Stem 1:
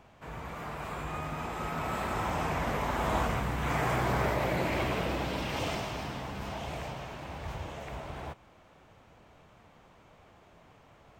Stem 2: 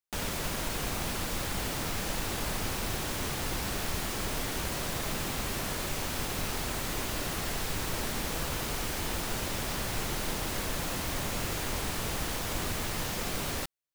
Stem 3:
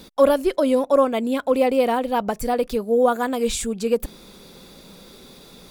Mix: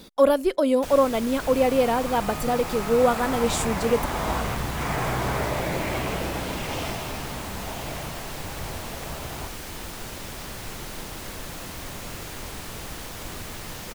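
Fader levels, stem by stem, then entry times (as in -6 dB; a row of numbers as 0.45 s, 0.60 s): +2.5 dB, -3.0 dB, -2.0 dB; 1.15 s, 0.70 s, 0.00 s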